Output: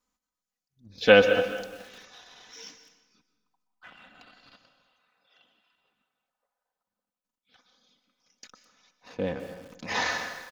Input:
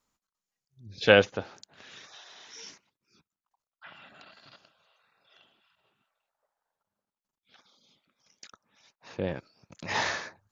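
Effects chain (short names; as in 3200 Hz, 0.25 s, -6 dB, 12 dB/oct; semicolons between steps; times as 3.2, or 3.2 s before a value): comb 4 ms, depth 62%; in parallel at -5 dB: backlash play -40.5 dBFS; on the sum: plate-style reverb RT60 1.1 s, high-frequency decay 0.85×, pre-delay 0.11 s, DRR 9 dB; lo-fi delay 0.209 s, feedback 35%, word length 6-bit, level -14 dB; gain -4 dB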